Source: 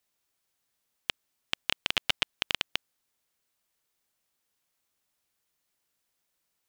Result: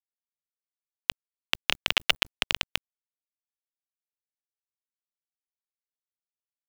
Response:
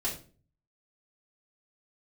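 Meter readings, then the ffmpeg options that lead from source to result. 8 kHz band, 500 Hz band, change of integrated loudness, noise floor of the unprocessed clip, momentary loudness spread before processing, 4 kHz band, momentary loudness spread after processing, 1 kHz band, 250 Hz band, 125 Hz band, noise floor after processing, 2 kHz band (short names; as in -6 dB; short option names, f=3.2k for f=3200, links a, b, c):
+5.0 dB, +5.0 dB, +4.5 dB, -80 dBFS, 9 LU, +4.0 dB, 9 LU, +4.5 dB, +3.0 dB, +2.0 dB, under -85 dBFS, +5.0 dB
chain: -af "afreqshift=-76,acrusher=bits=6:dc=4:mix=0:aa=0.000001,volume=4.5dB"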